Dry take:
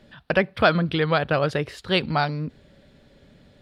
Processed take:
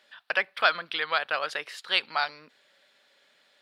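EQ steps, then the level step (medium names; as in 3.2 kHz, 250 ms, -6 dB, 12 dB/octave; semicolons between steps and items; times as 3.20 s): high-pass 1.1 kHz 12 dB/octave; 0.0 dB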